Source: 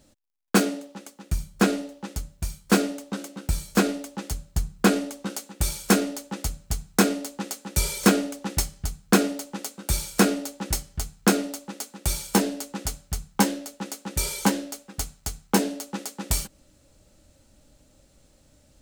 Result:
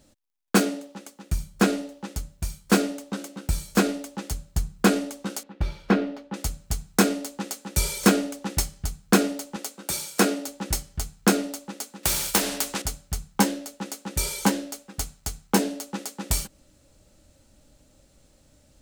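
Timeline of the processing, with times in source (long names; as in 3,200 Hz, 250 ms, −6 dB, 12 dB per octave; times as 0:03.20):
0:05.43–0:06.34: high-frequency loss of the air 330 metres
0:09.56–0:10.48: high-pass filter 220 Hz
0:12.03–0:12.82: every bin compressed towards the loudest bin 2 to 1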